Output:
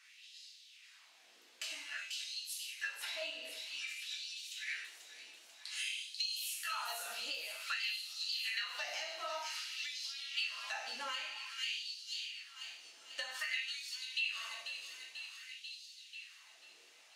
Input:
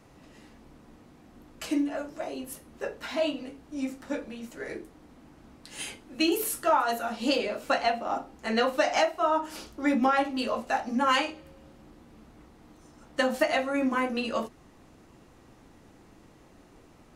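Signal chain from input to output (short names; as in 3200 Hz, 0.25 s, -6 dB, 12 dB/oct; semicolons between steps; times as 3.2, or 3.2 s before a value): weighting filter D; in parallel at -10.5 dB: soft clip -28.5 dBFS, distortion -4 dB; on the sum: passive tone stack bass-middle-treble 5-5-5; thin delay 0.49 s, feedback 59%, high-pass 3300 Hz, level -6 dB; plate-style reverb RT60 0.81 s, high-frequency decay 0.85×, DRR -0.5 dB; compressor 6:1, threshold -36 dBFS, peak gain reduction 15 dB; LFO high-pass sine 0.52 Hz 440–4300 Hz; gain -4 dB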